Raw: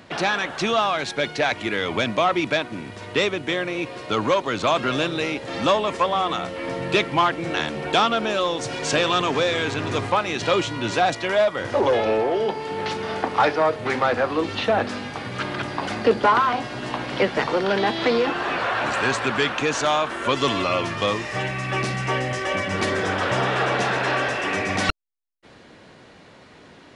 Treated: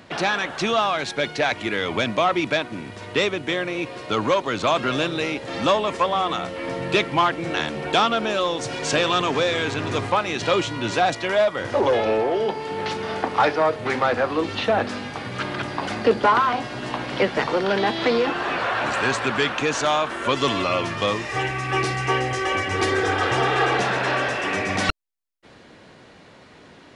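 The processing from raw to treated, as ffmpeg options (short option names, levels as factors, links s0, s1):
-filter_complex "[0:a]asettb=1/sr,asplit=3[s0][s1][s2];[s0]atrim=end=21.294[s3];[s1]atrim=start=21.29:end=23.8,asetpts=PTS-STARTPTS,afade=t=in:d=0.004:c=qsin,afade=t=out:st=2.506:d=0.004:c=qsin,aecho=1:1:2.5:0.68,atrim=end_sample=110691[s4];[s2]atrim=start=23.796[s5];[s3][s4]acrossfade=d=0.004:c1=hsin:c2=qsin[s6];[s6][s5]acrossfade=d=0.004:c1=qsin:c2=hsin"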